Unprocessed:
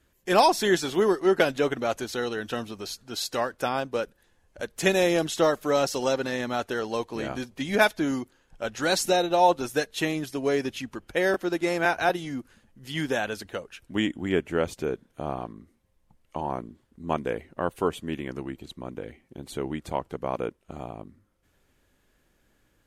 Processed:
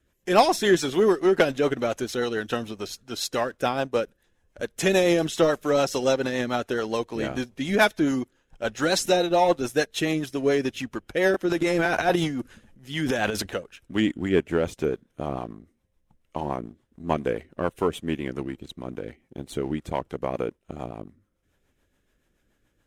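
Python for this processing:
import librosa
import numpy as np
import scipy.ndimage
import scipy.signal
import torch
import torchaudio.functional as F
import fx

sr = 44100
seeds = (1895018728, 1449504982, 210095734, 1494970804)

y = fx.high_shelf(x, sr, hz=11000.0, db=-3.5)
y = fx.notch(y, sr, hz=4500.0, q=11.0)
y = fx.leveller(y, sr, passes=1)
y = fx.transient(y, sr, attack_db=-3, sustain_db=10, at=(11.45, 13.55))
y = fx.rotary(y, sr, hz=7.0)
y = y * librosa.db_to_amplitude(1.0)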